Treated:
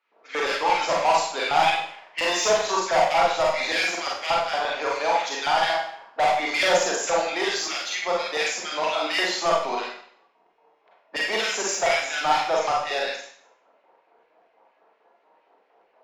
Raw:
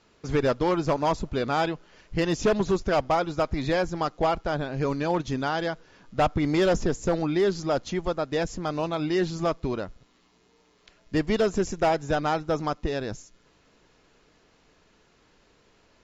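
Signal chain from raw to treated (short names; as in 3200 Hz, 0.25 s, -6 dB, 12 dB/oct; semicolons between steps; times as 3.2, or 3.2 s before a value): bin magnitudes rounded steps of 15 dB; low-pass opened by the level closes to 720 Hz, open at -22.5 dBFS; steep high-pass 180 Hz 72 dB/oct; high shelf 4100 Hz +6.5 dB; in parallel at -3 dB: limiter -24.5 dBFS, peak gain reduction 13 dB; on the sum: LFO high-pass square 4.3 Hz 760–2200 Hz; soft clip -18 dBFS, distortion -10 dB; Schroeder reverb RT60 0.59 s, combs from 33 ms, DRR -3.5 dB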